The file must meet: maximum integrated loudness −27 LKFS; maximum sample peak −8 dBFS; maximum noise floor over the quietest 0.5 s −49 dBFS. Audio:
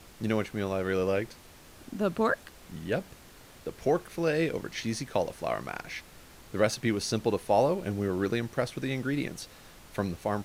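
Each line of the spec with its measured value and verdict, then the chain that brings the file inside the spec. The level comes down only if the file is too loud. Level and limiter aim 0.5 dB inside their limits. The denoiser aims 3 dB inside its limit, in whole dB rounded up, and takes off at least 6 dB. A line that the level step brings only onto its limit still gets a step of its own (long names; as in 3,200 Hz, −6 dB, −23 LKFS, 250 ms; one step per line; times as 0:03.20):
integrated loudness −30.5 LKFS: in spec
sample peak −11.0 dBFS: in spec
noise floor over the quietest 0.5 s −52 dBFS: in spec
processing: no processing needed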